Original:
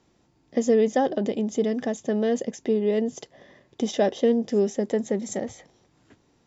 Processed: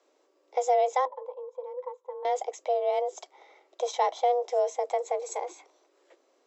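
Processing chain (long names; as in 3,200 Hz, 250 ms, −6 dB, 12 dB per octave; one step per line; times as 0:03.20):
0:01.05–0:02.25: pair of resonant band-passes 440 Hz, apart 1.5 octaves
frequency shifter +250 Hz
level −4 dB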